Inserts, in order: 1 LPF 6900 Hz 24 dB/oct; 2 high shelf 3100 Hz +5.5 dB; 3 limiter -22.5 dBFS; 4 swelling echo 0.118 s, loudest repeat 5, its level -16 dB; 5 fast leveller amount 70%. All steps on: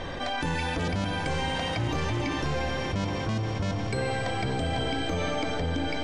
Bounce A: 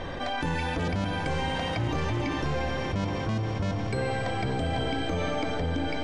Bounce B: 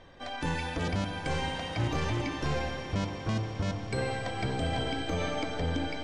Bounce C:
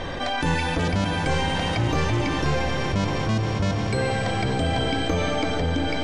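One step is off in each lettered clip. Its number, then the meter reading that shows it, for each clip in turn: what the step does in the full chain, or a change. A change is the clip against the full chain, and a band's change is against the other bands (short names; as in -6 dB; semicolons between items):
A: 2, 8 kHz band -4.5 dB; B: 5, momentary loudness spread change +1 LU; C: 3, mean gain reduction 1.5 dB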